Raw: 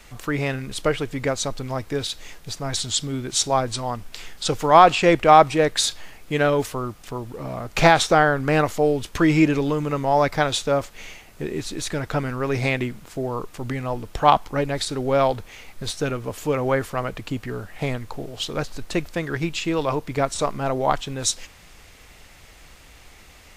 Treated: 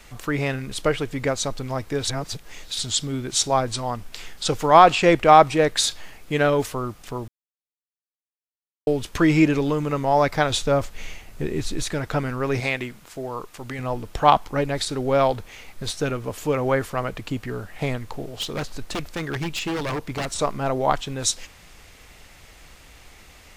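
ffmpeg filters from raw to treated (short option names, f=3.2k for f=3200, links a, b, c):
-filter_complex "[0:a]asettb=1/sr,asplit=3[a][b][c];[a]atrim=end=10.504[d];[b]atrim=start=10.5:end=11.83,asetpts=PTS-STARTPTS,afade=t=in:d=0.004:c=qsin,afade=t=out:st=1.326:d=0.004:c=qsin,lowshelf=f=110:g=10.5[e];[c]atrim=start=11.826[f];[d][e]acrossfade=d=0.004:c1=hsin:c2=qsin[g];[g][f]acrossfade=d=0.004:c1=qsin:c2=hsin,asettb=1/sr,asplit=3[h][i][j];[h]atrim=end=12.604[k];[i]atrim=start=12.6:end=13.79,asetpts=PTS-STARTPTS,afade=t=in:d=0.004:c=qsin,afade=t=out:st=1.186:d=0.004:c=qsin,lowshelf=f=470:g=-8[l];[j]atrim=start=13.786[m];[k][l]acrossfade=d=0.004:c1=hsin:c2=qsin[n];[n][m]acrossfade=d=0.004:c1=qsin:c2=hsin,asplit=3[o][p][q];[o]afade=t=out:st=18.02:d=0.02[r];[p]aeval=exprs='0.0891*(abs(mod(val(0)/0.0891+3,4)-2)-1)':c=same,afade=t=in:st=18.02:d=0.02,afade=t=out:st=20.33:d=0.02[s];[q]afade=t=in:st=20.33:d=0.02[t];[r][s][t]amix=inputs=3:normalize=0,asplit=5[u][v][w][x][y];[u]atrim=end=2.052[z];[v]atrim=start=2.048:end=2.792,asetpts=PTS-STARTPTS,areverse[aa];[w]atrim=start=2.788:end=7.28,asetpts=PTS-STARTPTS,afade=t=out:st=4.488:d=0.004:c=hsin[ab];[x]atrim=start=7.28:end=8.87,asetpts=PTS-STARTPTS,volume=0[ac];[y]atrim=start=8.87,asetpts=PTS-STARTPTS,afade=t=in:d=0.004:c=hsin[ad];[z][aa]acrossfade=d=0.004:c1=hsin:c2=hsin[ae];[ab][ac][ad]concat=n=3:v=0:a=1[af];[ae][af]acrossfade=d=0.004:c1=hsin:c2=hsin"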